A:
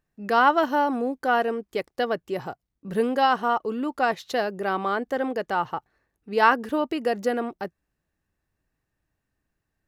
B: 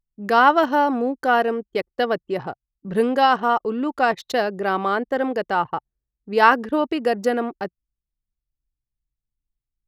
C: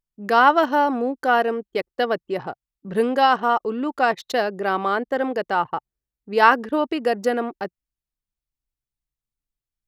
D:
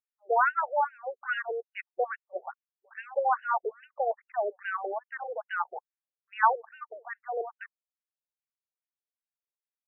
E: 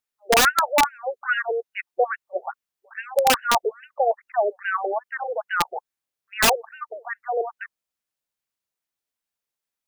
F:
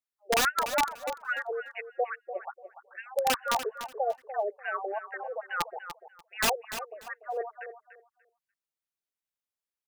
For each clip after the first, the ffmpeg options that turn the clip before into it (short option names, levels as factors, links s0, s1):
-af "anlmdn=0.398,volume=1.58"
-af "lowshelf=f=130:g=-7.5"
-af "afftfilt=real='re*between(b*sr/1024,510*pow(2100/510,0.5+0.5*sin(2*PI*2.4*pts/sr))/1.41,510*pow(2100/510,0.5+0.5*sin(2*PI*2.4*pts/sr))*1.41)':imag='im*between(b*sr/1024,510*pow(2100/510,0.5+0.5*sin(2*PI*2.4*pts/sr))/1.41,510*pow(2100/510,0.5+0.5*sin(2*PI*2.4*pts/sr))*1.41)':win_size=1024:overlap=0.75,volume=0.562"
-af "aeval=exprs='(mod(7.94*val(0)+1,2)-1)/7.94':c=same,volume=2.51"
-af "aecho=1:1:293|586|879:0.282|0.0535|0.0102,volume=0.376"